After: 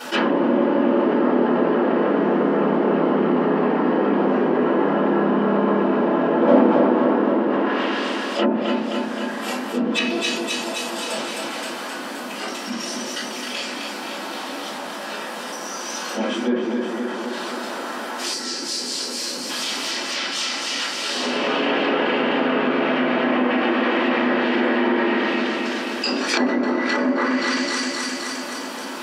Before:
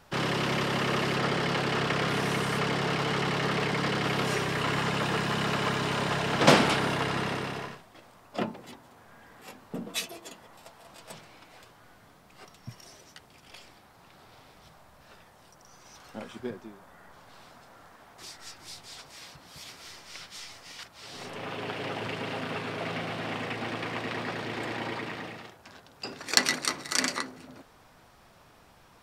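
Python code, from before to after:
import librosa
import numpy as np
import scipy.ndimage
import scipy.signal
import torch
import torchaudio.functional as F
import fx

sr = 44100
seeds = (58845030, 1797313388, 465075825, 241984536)

p1 = fx.low_shelf(x, sr, hz=260.0, db=3.5)
p2 = p1 + fx.echo_feedback(p1, sr, ms=261, feedback_pct=56, wet_db=-7.0, dry=0)
p3 = fx.room_shoebox(p2, sr, seeds[0], volume_m3=35.0, walls='mixed', distance_m=2.9)
p4 = fx.spec_box(p3, sr, start_s=18.34, length_s=1.16, low_hz=570.0, high_hz=3900.0, gain_db=-8)
p5 = fx.high_shelf(p4, sr, hz=4000.0, db=2.5)
p6 = fx.env_lowpass_down(p5, sr, base_hz=780.0, full_db=-9.5)
p7 = fx.brickwall_highpass(p6, sr, low_hz=190.0)
p8 = fx.env_flatten(p7, sr, amount_pct=50)
y = F.gain(torch.from_numpy(p8), -9.5).numpy()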